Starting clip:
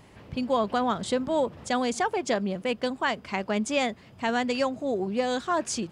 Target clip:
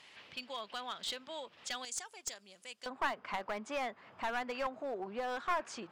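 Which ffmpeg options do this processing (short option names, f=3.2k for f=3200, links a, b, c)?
-af "acompressor=threshold=-38dB:ratio=2,asetnsamples=n=441:p=0,asendcmd='1.85 bandpass f 8000;2.86 bandpass f 1200',bandpass=f=3.3k:t=q:w=1.3:csg=0,aeval=exprs='clip(val(0),-1,0.0112)':c=same,volume=6dB"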